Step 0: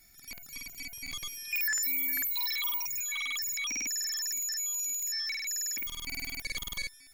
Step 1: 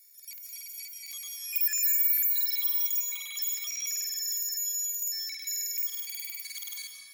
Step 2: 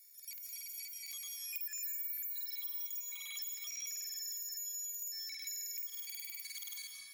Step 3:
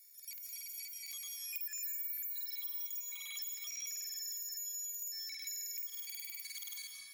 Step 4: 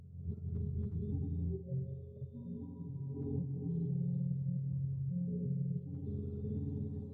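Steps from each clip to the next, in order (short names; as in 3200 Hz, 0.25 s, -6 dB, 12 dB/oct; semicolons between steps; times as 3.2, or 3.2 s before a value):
differentiator; digital reverb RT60 2.6 s, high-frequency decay 0.35×, pre-delay 0.115 s, DRR 2 dB; gain +1 dB
compressor 4:1, threshold -38 dBFS, peak gain reduction 13.5 dB; bell 560 Hz -8.5 dB 0.37 oct; gain -3 dB
nothing audible
spectrum mirrored in octaves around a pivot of 970 Hz; gain +3.5 dB; AAC 32 kbps 48000 Hz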